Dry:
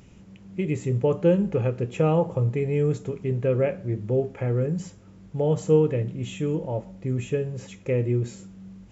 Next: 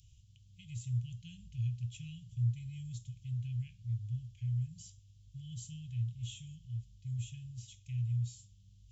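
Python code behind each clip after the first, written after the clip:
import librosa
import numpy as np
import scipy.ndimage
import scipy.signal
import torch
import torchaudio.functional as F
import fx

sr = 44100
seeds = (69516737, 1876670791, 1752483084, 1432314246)

y = scipy.signal.sosfilt(scipy.signal.cheby1(4, 1.0, [120.0, 3100.0], 'bandstop', fs=sr, output='sos'), x)
y = F.gain(torch.from_numpy(y), -6.0).numpy()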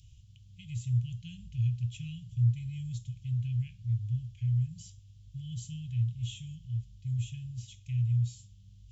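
y = fx.high_shelf(x, sr, hz=5700.0, db=-8.0)
y = F.gain(torch.from_numpy(y), 6.0).numpy()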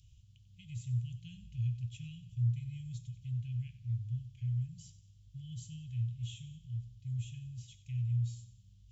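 y = fx.echo_feedback(x, sr, ms=93, feedback_pct=48, wet_db=-14.5)
y = F.gain(torch.from_numpy(y), -5.5).numpy()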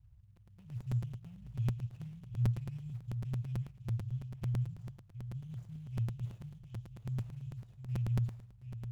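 y = scipy.signal.medfilt(x, 41)
y = y + 10.0 ** (-10.0 / 20.0) * np.pad(y, (int(727 * sr / 1000.0), 0))[:len(y)]
y = fx.buffer_crackle(y, sr, first_s=0.36, period_s=0.11, block=256, kind='repeat')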